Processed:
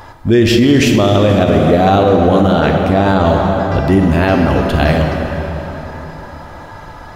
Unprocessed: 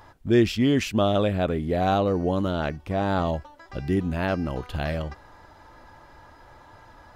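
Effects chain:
dense smooth reverb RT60 4.2 s, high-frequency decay 0.65×, DRR 2.5 dB
boost into a limiter +15.5 dB
level −1 dB

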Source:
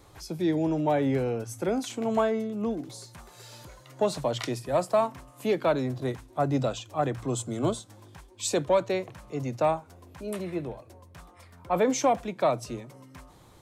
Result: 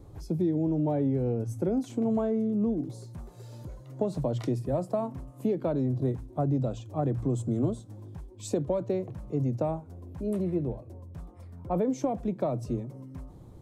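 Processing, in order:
tilt shelving filter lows +9 dB, about 710 Hz
downward compressor, threshold −23 dBFS, peak gain reduction 8.5 dB
parametric band 2,100 Hz −5.5 dB 2.8 octaves

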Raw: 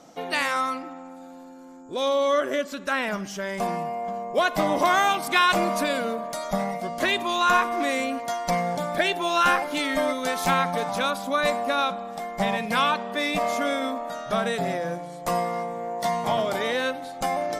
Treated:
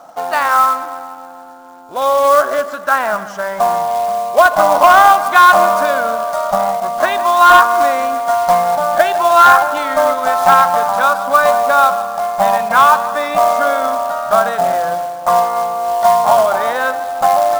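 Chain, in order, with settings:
flat-topped bell 970 Hz +16 dB
on a send: bucket-brigade delay 151 ms, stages 4,096, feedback 55%, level −15 dB
on the sum: floating-point word with a short mantissa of 2 bits
level −1 dB

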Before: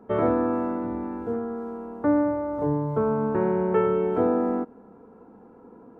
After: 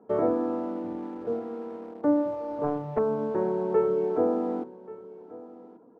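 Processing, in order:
reverb reduction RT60 0.58 s
in parallel at −8 dB: bit reduction 6 bits
on the sum: resonant band-pass 480 Hz, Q 0.66
on a send: single-tap delay 1,134 ms −19 dB
on the sum: rectangular room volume 2,900 cubic metres, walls furnished, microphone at 0.51 metres
0:02.33–0:02.99: highs frequency-modulated by the lows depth 0.67 ms
level −3.5 dB

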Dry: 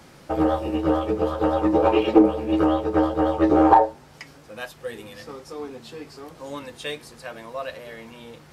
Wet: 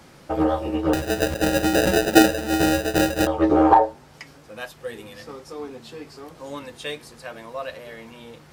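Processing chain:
0:00.93–0:03.27: sample-rate reduction 1,100 Hz, jitter 0%

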